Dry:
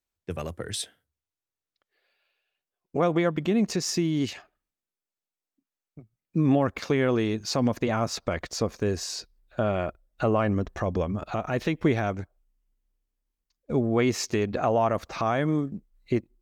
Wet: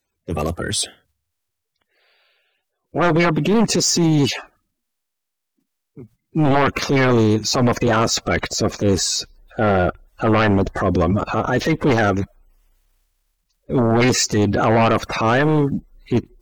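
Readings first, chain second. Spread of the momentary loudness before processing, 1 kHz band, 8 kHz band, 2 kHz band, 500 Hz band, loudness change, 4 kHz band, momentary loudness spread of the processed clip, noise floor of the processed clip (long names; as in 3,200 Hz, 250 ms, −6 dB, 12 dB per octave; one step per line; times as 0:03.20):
11 LU, +10.0 dB, +13.0 dB, +12.0 dB, +7.5 dB, +8.5 dB, +12.0 dB, 8 LU, −78 dBFS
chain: spectral magnitudes quantised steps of 30 dB
transient designer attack −8 dB, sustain +2 dB
sine wavefolder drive 10 dB, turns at −11 dBFS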